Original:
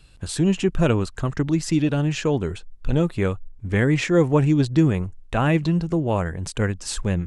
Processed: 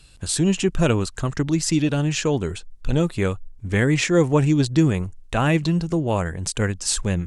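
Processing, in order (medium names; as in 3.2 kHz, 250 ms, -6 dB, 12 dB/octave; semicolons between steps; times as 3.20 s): peaking EQ 8 kHz +8 dB 2.2 oct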